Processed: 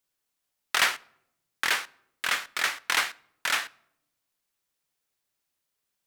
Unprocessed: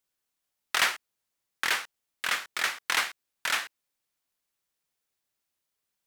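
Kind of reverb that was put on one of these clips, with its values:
rectangular room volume 2,200 cubic metres, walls furnished, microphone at 0.31 metres
level +1.5 dB

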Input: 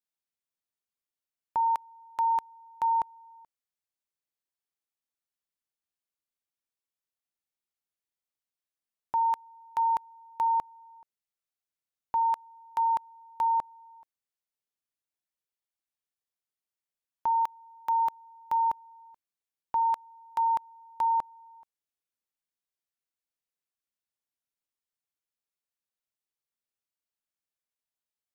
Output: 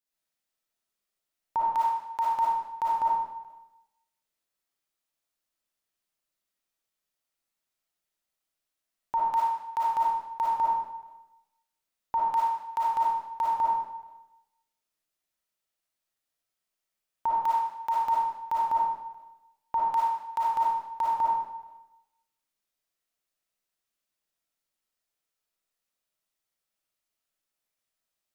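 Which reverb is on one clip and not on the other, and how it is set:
comb and all-pass reverb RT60 0.88 s, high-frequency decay 0.95×, pre-delay 15 ms, DRR −6.5 dB

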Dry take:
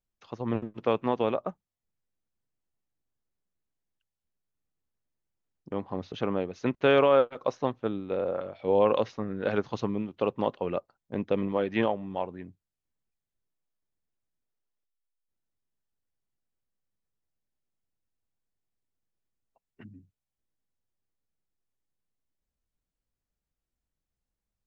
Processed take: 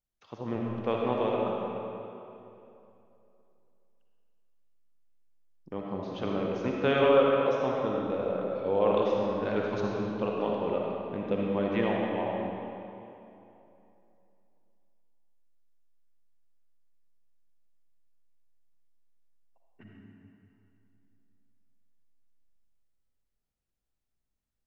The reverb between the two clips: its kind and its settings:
comb and all-pass reverb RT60 2.9 s, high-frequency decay 0.75×, pre-delay 20 ms, DRR −2.5 dB
level −4.5 dB

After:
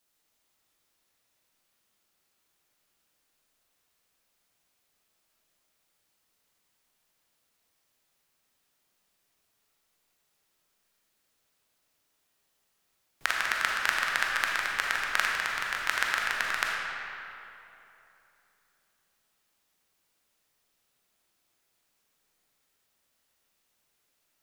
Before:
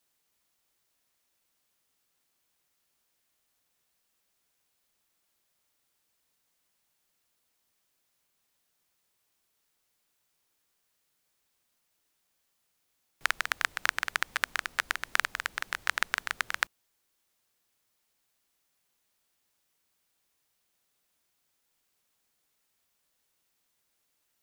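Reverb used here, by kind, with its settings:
comb and all-pass reverb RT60 3 s, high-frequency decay 0.65×, pre-delay 0 ms, DRR −2.5 dB
level −1 dB

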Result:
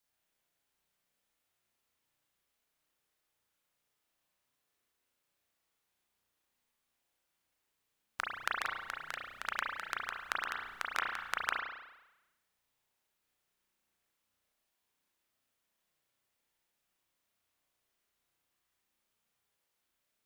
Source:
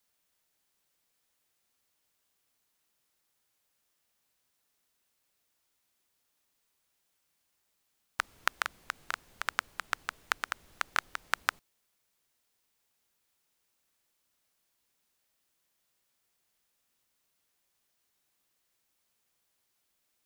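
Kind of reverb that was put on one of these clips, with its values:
spring reverb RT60 1 s, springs 33 ms, chirp 25 ms, DRR −2.5 dB
level −6.5 dB

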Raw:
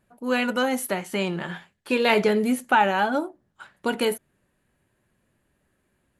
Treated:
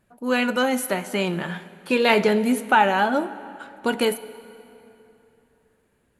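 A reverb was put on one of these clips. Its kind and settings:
dense smooth reverb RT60 3.2 s, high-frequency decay 0.7×, DRR 14.5 dB
level +2 dB

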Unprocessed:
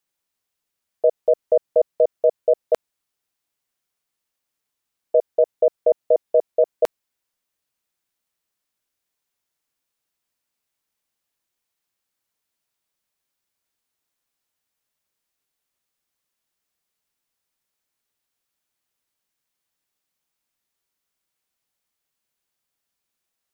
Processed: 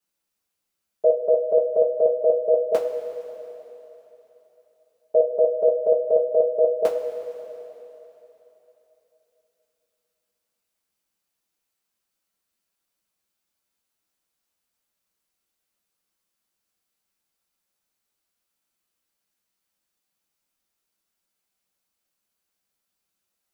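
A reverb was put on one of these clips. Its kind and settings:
coupled-rooms reverb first 0.22 s, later 3.4 s, from −18 dB, DRR −8 dB
level −8.5 dB

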